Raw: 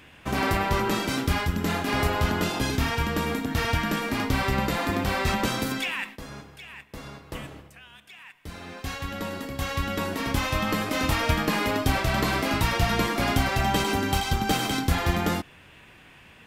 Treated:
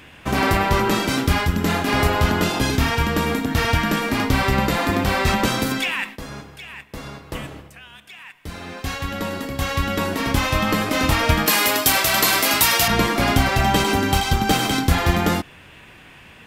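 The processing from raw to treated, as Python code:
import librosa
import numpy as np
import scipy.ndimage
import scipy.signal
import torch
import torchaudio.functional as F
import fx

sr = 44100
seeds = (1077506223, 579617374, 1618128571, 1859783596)

y = fx.riaa(x, sr, side='recording', at=(11.46, 12.88))
y = y * librosa.db_to_amplitude(6.0)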